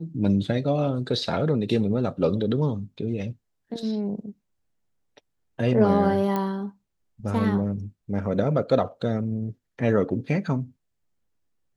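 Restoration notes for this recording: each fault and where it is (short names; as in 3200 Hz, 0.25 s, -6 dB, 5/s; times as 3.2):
6.36 pop -14 dBFS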